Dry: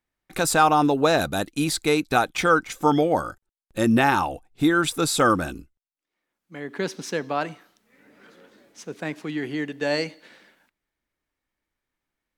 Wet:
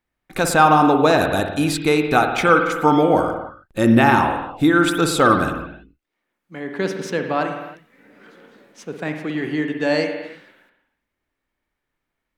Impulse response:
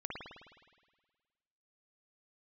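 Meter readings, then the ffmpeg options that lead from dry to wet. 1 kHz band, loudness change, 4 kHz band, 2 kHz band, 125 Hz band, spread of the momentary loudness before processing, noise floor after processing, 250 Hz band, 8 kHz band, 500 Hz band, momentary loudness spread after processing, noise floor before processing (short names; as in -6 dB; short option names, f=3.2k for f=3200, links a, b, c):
+5.0 dB, +5.0 dB, +1.5 dB, +5.0 dB, +6.0 dB, 15 LU, -80 dBFS, +5.5 dB, -1.0 dB, +5.0 dB, 17 LU, -85 dBFS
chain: -filter_complex "[0:a]asplit=2[a][b];[1:a]atrim=start_sample=2205,afade=t=out:st=0.39:d=0.01,atrim=end_sample=17640,lowpass=4.2k[c];[b][c]afir=irnorm=-1:irlink=0,volume=-0.5dB[d];[a][d]amix=inputs=2:normalize=0"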